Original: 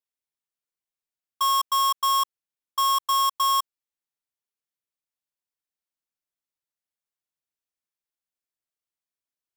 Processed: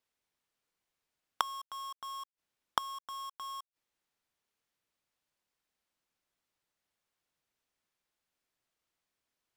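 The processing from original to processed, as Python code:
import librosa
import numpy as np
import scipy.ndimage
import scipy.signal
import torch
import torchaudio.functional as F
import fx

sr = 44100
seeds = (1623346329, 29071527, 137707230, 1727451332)

y = fx.lowpass(x, sr, hz=3900.0, slope=6)
y = fx.leveller(y, sr, passes=3)
y = fx.gate_flip(y, sr, shuts_db=-31.0, range_db=-36)
y = F.gain(torch.from_numpy(y), 16.0).numpy()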